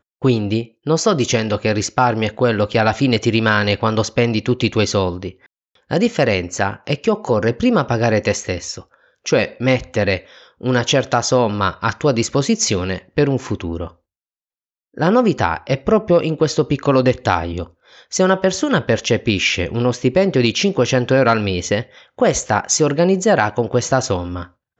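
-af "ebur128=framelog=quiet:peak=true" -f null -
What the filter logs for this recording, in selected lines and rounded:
Integrated loudness:
  I:         -17.6 LUFS
  Threshold: -27.9 LUFS
Loudness range:
  LRA:         3.0 LU
  Threshold: -38.0 LUFS
  LRA low:   -19.6 LUFS
  LRA high:  -16.6 LUFS
True peak:
  Peak:       -1.9 dBFS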